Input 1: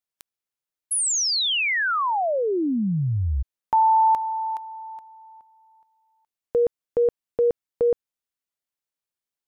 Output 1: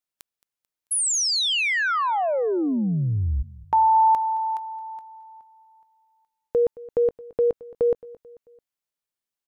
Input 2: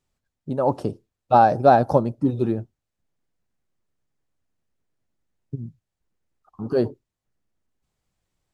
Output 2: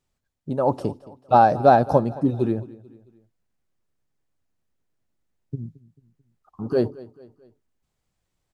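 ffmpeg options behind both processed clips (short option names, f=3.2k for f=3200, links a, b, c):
-af "aecho=1:1:220|440|660:0.1|0.046|0.0212"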